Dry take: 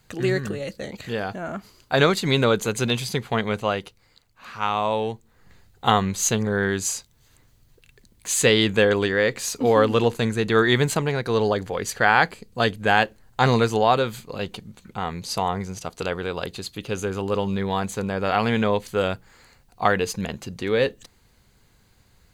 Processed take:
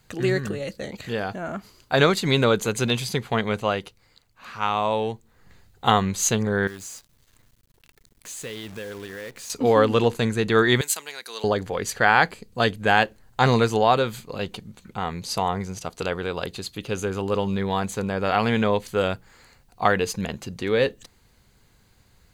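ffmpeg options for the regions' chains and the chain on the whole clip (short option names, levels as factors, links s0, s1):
-filter_complex "[0:a]asettb=1/sr,asplit=3[s0][s1][s2];[s0]atrim=end=6.674[s3];[s1]atrim=start=6.67:end=9.5,asetpts=PTS-STARTPTS,afade=t=in:d=0.004:c=qsin,afade=t=out:st=2.826:d=0.004:c=qsin,bandreject=f=800:w=5.5,acompressor=threshold=0.00891:ratio=2.5:attack=3.2:release=140:knee=1:detection=peak,acrusher=bits=8:dc=4:mix=0:aa=0.000001[s4];[s2]atrim=start=9.496[s5];[s3][s4]acrossfade=d=0.004:c1=hsin:c2=qsin[s6];[s6][s5]acrossfade=d=0.004:c1=qsin:c2=hsin,asettb=1/sr,asplit=3[s7][s8][s9];[s7]atrim=end=10.814[s10];[s8]atrim=start=10.81:end=11.44,asetpts=PTS-STARTPTS,afade=t=in:d=0.004:c=qsin,afade=t=out:st=0.626:d=0.004:c=qsin,highpass=f=170:w=0.5412,highpass=f=170:w=1.3066,aderivative,acontrast=25[s11];[s9]atrim=start=11.436[s12];[s10][s11]acrossfade=d=0.004:c1=hsin:c2=qsin[s13];[s13][s12]acrossfade=d=0.004:c1=qsin:c2=hsin"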